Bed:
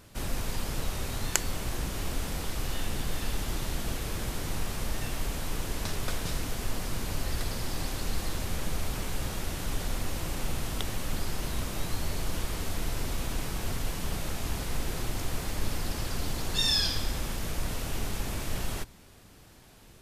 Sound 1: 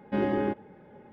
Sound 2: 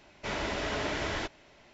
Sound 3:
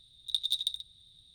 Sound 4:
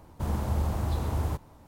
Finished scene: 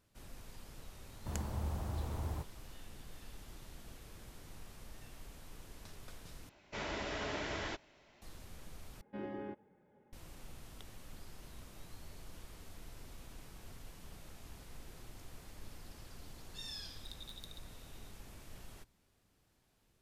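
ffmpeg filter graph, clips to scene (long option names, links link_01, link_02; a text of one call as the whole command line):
ffmpeg -i bed.wav -i cue0.wav -i cue1.wav -i cue2.wav -i cue3.wav -filter_complex "[0:a]volume=-20dB[link_01];[3:a]acompressor=threshold=-39dB:ratio=6:attack=3.2:release=140:knee=1:detection=peak[link_02];[link_01]asplit=3[link_03][link_04][link_05];[link_03]atrim=end=6.494[link_06];[2:a]atrim=end=1.73,asetpts=PTS-STARTPTS,volume=-7dB[link_07];[link_04]atrim=start=8.216:end=9.014[link_08];[1:a]atrim=end=1.12,asetpts=PTS-STARTPTS,volume=-16.5dB[link_09];[link_05]atrim=start=10.126[link_10];[4:a]atrim=end=1.67,asetpts=PTS-STARTPTS,volume=-10.5dB,afade=type=in:duration=0.004:curve=hsin,afade=type=out:start_time=1.666:duration=0.004:curve=hsin,adelay=1060[link_11];[link_02]atrim=end=1.34,asetpts=PTS-STARTPTS,volume=-9dB,afade=type=in:duration=0.004:curve=hsin,afade=type=out:start_time=1.336:duration=0.004:curve=hsin,adelay=16770[link_12];[link_06][link_07]acrossfade=duration=0.004:curve1=hsin:curve2=hsin[link_13];[link_13][link_08]acrossfade=duration=0.004:curve1=hsin:curve2=hsin[link_14];[link_14][link_09]acrossfade=duration=0.004:curve1=hsin:curve2=hsin[link_15];[link_15][link_10]acrossfade=duration=0.004:curve1=hsin:curve2=hsin[link_16];[link_16][link_11][link_12]amix=inputs=3:normalize=0" out.wav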